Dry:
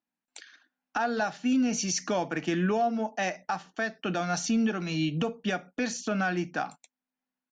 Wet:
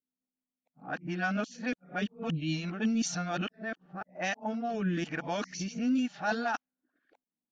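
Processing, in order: whole clip reversed; rotary speaker horn 7 Hz, later 1 Hz, at 2.57; low-pass opened by the level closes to 480 Hz, open at -24.5 dBFS; dynamic EQ 400 Hz, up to -6 dB, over -43 dBFS, Q 1.3

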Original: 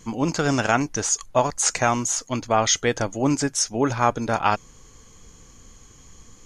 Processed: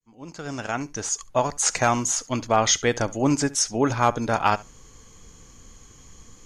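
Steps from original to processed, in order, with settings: opening faded in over 1.83 s; flutter echo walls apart 11.8 m, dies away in 0.2 s; overloaded stage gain 7.5 dB

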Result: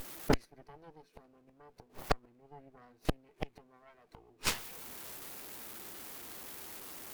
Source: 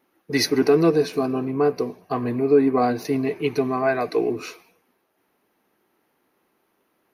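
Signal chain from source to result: zero-crossing step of -30.5 dBFS; flipped gate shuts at -18 dBFS, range -31 dB; added harmonics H 5 -24 dB, 6 -8 dB, 7 -13 dB, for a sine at -17.5 dBFS; gain +1.5 dB

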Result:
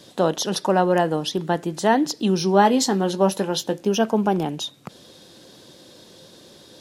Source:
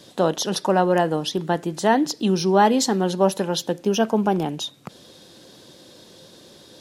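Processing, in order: 2.4–3.85 doubler 20 ms -11 dB

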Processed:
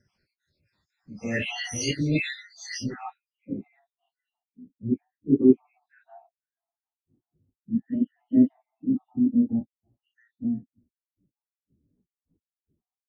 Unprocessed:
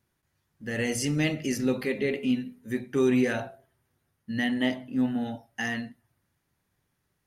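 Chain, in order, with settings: random spectral dropouts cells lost 71%; plain phase-vocoder stretch 1.8×; low-pass sweep 4700 Hz -> 290 Hz, 2.76–3.28; gain +7 dB

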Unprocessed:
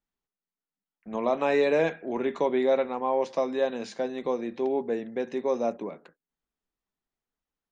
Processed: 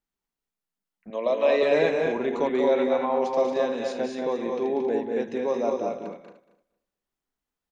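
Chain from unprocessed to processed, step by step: regenerating reverse delay 0.115 s, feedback 41%, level -9.5 dB; 1.1–1.63 speaker cabinet 350–5900 Hz, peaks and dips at 390 Hz -4 dB, 560 Hz +10 dB, 810 Hz -10 dB, 1400 Hz -9 dB, 3100 Hz +5 dB, 4600 Hz +7 dB; tapped delay 0.19/0.226/0.305 s -6.5/-5/-18 dB

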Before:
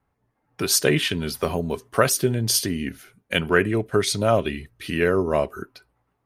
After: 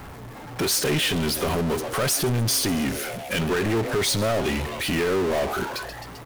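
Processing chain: limiter -13 dBFS, peak gain reduction 9.5 dB; frequency-shifting echo 0.131 s, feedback 50%, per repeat +150 Hz, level -22 dB; power-law curve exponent 0.35; gain -5 dB

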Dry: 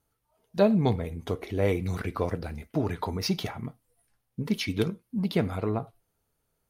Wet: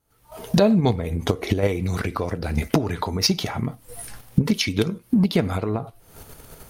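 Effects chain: recorder AGC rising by 78 dB/s; dynamic EQ 6400 Hz, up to +5 dB, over -48 dBFS, Q 0.92; in parallel at -1 dB: level quantiser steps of 23 dB

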